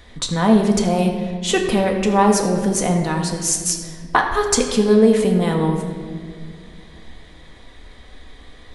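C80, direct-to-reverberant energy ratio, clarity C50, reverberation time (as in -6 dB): 7.0 dB, 1.0 dB, 5.5 dB, 2.0 s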